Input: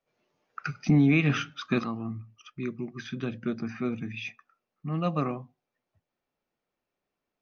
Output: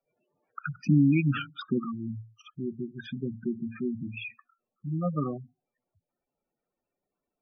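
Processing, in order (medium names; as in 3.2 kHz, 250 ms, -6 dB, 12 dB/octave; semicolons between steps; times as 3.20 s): spectral gate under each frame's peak -10 dB strong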